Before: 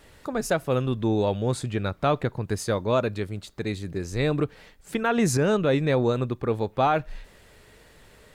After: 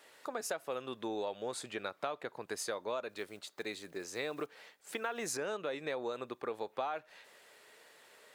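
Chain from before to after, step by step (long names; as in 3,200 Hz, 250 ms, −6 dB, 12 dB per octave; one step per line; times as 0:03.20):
0:03.09–0:05.37: one scale factor per block 7 bits
high-pass filter 500 Hz 12 dB per octave
downward compressor 6 to 1, threshold −30 dBFS, peak gain reduction 11.5 dB
level −4 dB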